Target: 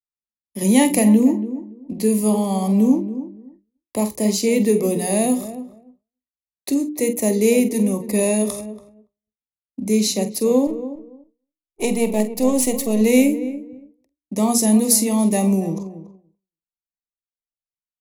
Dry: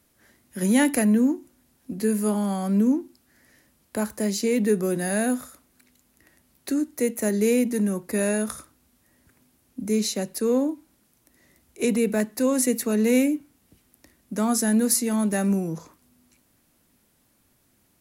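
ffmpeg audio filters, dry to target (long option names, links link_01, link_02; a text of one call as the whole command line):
ffmpeg -i in.wav -filter_complex "[0:a]asettb=1/sr,asplit=3[link_01][link_02][link_03];[link_01]atrim=end=10.674[link_04];[link_02]atrim=start=10.67:end=13.01,asetpts=PTS-STARTPTS,afade=type=in:duration=0.004:curve=qsin,afade=type=out:start_time=2.336:duration=0.004:curve=qsin,aeval=exprs='if(lt(val(0),0),0.447*val(0),val(0))':channel_layout=same[link_05];[link_03]atrim=start=13.006[link_06];[link_04][link_05]acrossfade=duration=0.004:curve1=hsin:curve2=qsin[link_07];[link_07][link_06]acrossfade=duration=0.004:curve1=qsin:curve2=hsin,anlmdn=0.0398,asuperstop=centerf=1500:order=4:qfactor=1.6,lowshelf=frequency=120:gain=-4,bandreject=frequency=60:width_type=h:width=6,bandreject=frequency=120:width_type=h:width=6,bandreject=frequency=180:width_type=h:width=6,bandreject=frequency=240:width_type=h:width=6,bandreject=frequency=300:width_type=h:width=6,bandreject=frequency=360:width_type=h:width=6,bandreject=frequency=420:width_type=h:width=6,bandreject=frequency=480:width_type=h:width=6,bandreject=frequency=540:width_type=h:width=6,asplit=2[link_08][link_09];[link_09]adelay=47,volume=-11.5dB[link_10];[link_08][link_10]amix=inputs=2:normalize=0,asplit=2[link_11][link_12];[link_12]adelay=283,lowpass=frequency=1000:poles=1,volume=-12dB,asplit=2[link_13][link_14];[link_14]adelay=283,lowpass=frequency=1000:poles=1,volume=0.2,asplit=2[link_15][link_16];[link_16]adelay=283,lowpass=frequency=1000:poles=1,volume=0.2[link_17];[link_11][link_13][link_15][link_17]amix=inputs=4:normalize=0,agate=range=-33dB:threshold=-47dB:ratio=3:detection=peak,volume=6dB" out.wav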